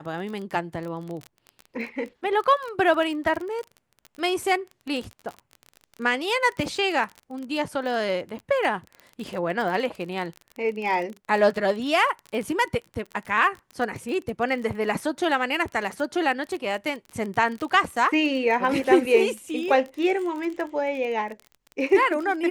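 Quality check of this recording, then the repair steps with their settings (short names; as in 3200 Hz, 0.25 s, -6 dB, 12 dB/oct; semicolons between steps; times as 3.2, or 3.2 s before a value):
crackle 28/s -30 dBFS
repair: de-click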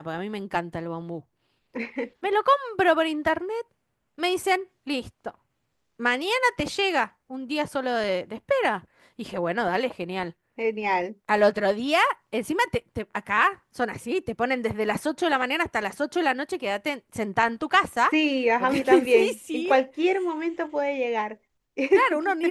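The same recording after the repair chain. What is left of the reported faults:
none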